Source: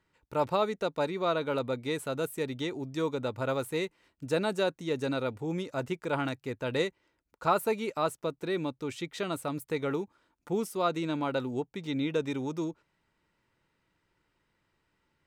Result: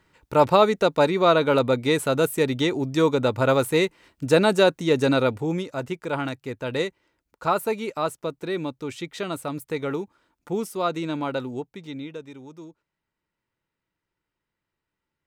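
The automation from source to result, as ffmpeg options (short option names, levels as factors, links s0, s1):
-af "volume=3.55,afade=t=out:st=5.23:d=0.47:silence=0.421697,afade=t=out:st=11.29:d=0.94:silence=0.237137"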